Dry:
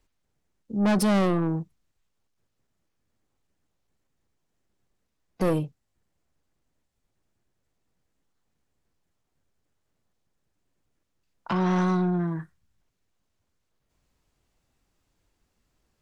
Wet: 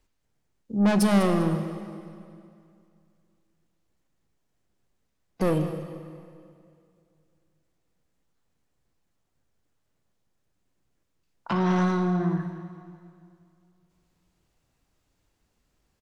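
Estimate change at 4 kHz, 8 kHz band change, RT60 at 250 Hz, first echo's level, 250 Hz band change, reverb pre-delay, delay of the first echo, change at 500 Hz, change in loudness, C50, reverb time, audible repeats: +1.0 dB, +1.0 dB, 2.5 s, -13.5 dB, +1.0 dB, 11 ms, 199 ms, +0.5 dB, 0.0 dB, 7.5 dB, 2.4 s, 1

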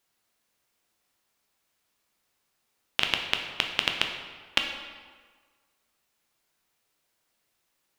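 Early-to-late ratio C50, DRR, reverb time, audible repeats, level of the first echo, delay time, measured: 5.5 dB, 3.0 dB, 1.5 s, no echo, no echo, no echo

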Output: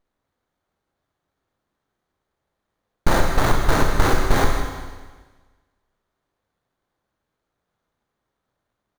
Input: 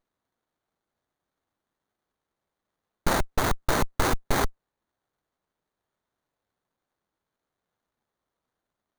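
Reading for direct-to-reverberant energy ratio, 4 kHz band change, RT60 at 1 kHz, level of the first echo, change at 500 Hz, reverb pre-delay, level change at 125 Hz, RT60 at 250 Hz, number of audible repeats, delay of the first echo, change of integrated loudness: 1.0 dB, +4.0 dB, 1.4 s, -12.0 dB, +6.5 dB, 24 ms, +9.0 dB, 1.4 s, 1, 160 ms, +6.0 dB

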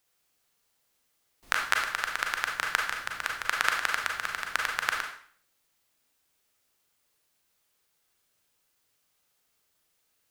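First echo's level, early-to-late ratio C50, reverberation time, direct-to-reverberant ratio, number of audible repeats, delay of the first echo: no echo, 4.0 dB, 0.50 s, 0.5 dB, no echo, no echo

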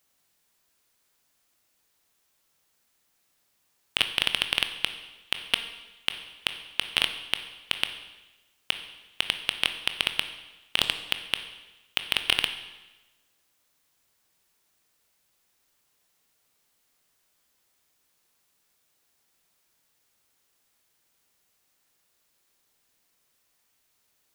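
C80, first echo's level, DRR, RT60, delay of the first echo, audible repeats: 12.0 dB, no echo, 8.0 dB, 1.1 s, no echo, no echo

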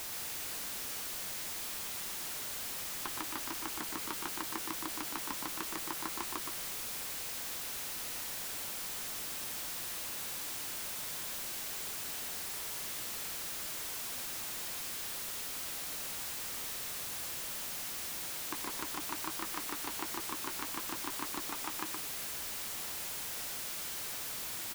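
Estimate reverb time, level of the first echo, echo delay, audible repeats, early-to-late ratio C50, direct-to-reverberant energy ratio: no reverb, -5.0 dB, 119 ms, 1, no reverb, no reverb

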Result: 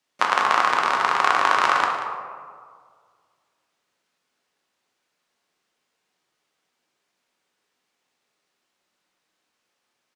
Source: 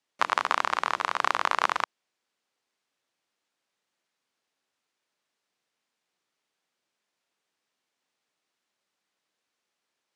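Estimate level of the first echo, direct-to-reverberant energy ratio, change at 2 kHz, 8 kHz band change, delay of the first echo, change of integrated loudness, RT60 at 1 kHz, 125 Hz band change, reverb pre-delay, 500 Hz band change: -12.0 dB, -0.5 dB, +7.5 dB, +6.0 dB, 185 ms, +7.0 dB, 1.8 s, no reading, 4 ms, +7.5 dB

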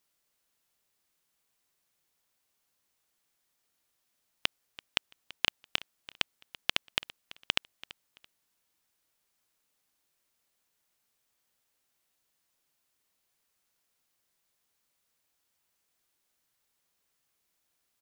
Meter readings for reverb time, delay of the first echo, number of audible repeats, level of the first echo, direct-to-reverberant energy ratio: no reverb, 335 ms, 2, -18.5 dB, no reverb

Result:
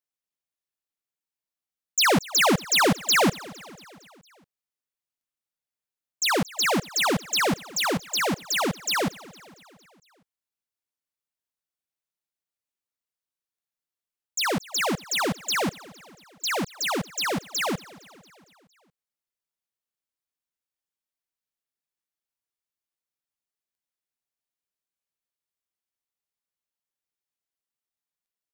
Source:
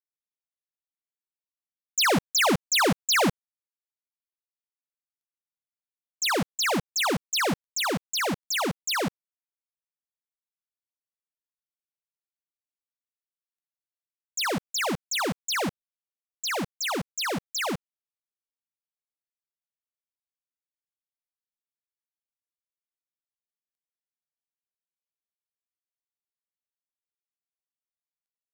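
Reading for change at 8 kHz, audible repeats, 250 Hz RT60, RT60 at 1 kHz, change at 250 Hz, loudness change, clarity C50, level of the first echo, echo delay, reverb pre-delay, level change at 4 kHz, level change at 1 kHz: +2.0 dB, 4, no reverb, no reverb, +2.0 dB, +2.0 dB, no reverb, -21.0 dB, 229 ms, no reverb, +2.0 dB, +2.0 dB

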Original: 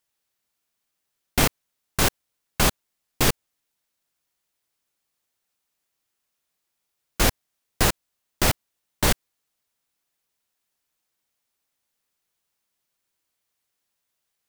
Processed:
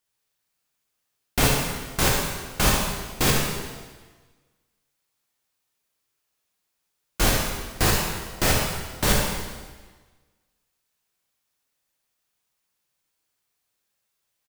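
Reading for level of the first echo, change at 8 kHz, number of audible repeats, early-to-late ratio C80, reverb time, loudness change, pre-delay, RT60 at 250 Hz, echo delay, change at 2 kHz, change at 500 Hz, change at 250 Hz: -7.5 dB, +1.5 dB, 1, 3.0 dB, 1.4 s, +0.5 dB, 7 ms, 1.5 s, 72 ms, +2.0 dB, +2.0 dB, +1.5 dB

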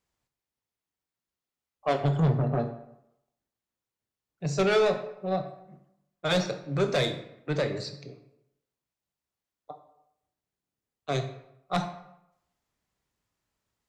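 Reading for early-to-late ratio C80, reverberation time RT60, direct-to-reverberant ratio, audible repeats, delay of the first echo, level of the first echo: 12.5 dB, 0.80 s, 7.0 dB, no echo, no echo, no echo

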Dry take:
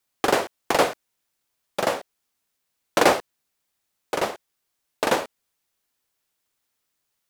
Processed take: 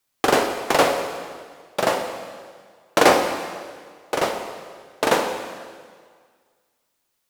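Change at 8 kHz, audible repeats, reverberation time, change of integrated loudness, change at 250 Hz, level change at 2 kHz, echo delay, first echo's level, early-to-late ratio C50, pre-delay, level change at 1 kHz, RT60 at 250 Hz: +3.0 dB, no echo, 1.8 s, +2.5 dB, +3.5 dB, +3.5 dB, no echo, no echo, 6.0 dB, 5 ms, +3.5 dB, 1.7 s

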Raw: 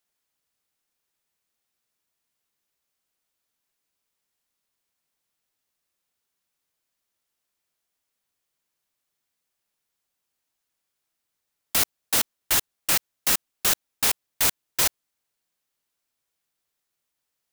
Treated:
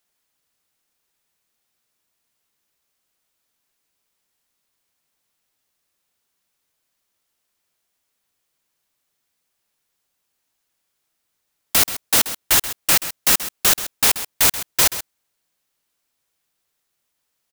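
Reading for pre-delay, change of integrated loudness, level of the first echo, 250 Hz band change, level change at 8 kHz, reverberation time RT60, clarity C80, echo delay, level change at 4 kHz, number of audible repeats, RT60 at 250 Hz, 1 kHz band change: no reverb, +6.0 dB, -13.0 dB, +6.0 dB, +6.0 dB, no reverb, no reverb, 131 ms, +6.0 dB, 1, no reverb, +6.0 dB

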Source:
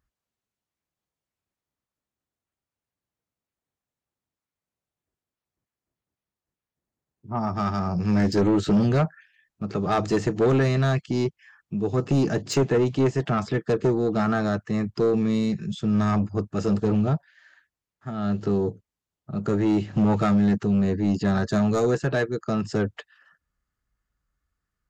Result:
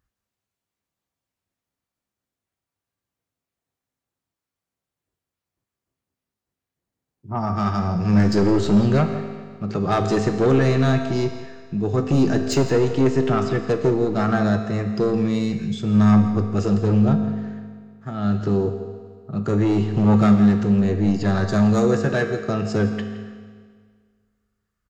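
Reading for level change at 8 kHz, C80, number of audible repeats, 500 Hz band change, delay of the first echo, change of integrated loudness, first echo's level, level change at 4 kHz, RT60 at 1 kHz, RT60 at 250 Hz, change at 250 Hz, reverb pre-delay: no reading, 8.0 dB, 1, +3.0 dB, 166 ms, +4.0 dB, -15.5 dB, +3.0 dB, 1.8 s, 1.8 s, +4.0 dB, 4 ms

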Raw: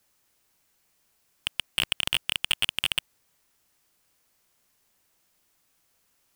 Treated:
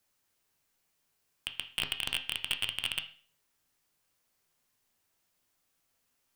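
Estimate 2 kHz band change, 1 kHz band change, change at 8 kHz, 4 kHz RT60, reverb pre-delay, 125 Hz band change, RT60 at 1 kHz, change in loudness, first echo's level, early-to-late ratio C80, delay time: -6.5 dB, -6.5 dB, -7.5 dB, 0.40 s, 8 ms, -6.0 dB, 0.45 s, -6.5 dB, no echo, 17.0 dB, no echo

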